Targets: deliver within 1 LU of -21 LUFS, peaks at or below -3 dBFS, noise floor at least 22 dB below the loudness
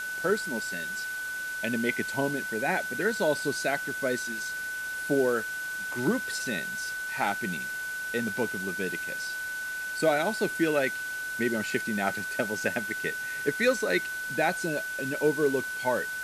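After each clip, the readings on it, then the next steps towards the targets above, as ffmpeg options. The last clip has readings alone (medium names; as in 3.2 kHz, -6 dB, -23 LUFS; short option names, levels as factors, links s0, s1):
steady tone 1.5 kHz; tone level -32 dBFS; noise floor -35 dBFS; noise floor target -51 dBFS; loudness -29.0 LUFS; peak level -12.5 dBFS; loudness target -21.0 LUFS
-> -af "bandreject=f=1500:w=30"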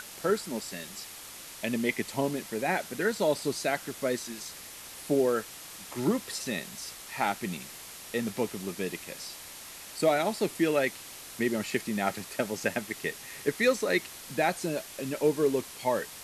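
steady tone not found; noise floor -45 dBFS; noise floor target -53 dBFS
-> -af "afftdn=nr=8:nf=-45"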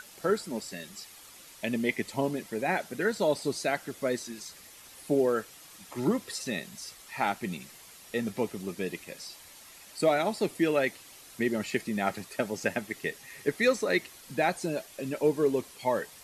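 noise floor -51 dBFS; noise floor target -53 dBFS
-> -af "afftdn=nr=6:nf=-51"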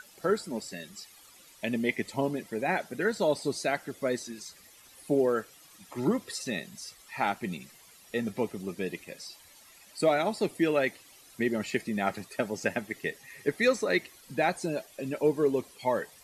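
noise floor -56 dBFS; loudness -30.5 LUFS; peak level -13.5 dBFS; loudness target -21.0 LUFS
-> -af "volume=2.99"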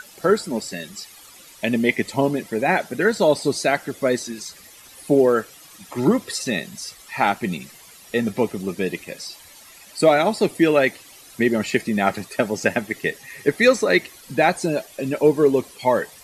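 loudness -21.0 LUFS; peak level -4.0 dBFS; noise floor -46 dBFS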